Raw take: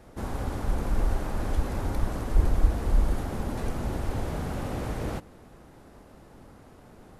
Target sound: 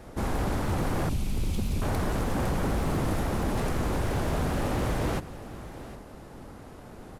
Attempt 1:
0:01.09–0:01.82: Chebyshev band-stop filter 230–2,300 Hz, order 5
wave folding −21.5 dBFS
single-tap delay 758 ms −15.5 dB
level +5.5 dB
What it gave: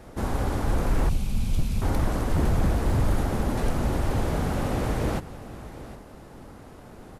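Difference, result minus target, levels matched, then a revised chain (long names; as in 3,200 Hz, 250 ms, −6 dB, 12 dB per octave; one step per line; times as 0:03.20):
wave folding: distortion −7 dB
0:01.09–0:01.82: Chebyshev band-stop filter 230–2,300 Hz, order 5
wave folding −27.5 dBFS
single-tap delay 758 ms −15.5 dB
level +5.5 dB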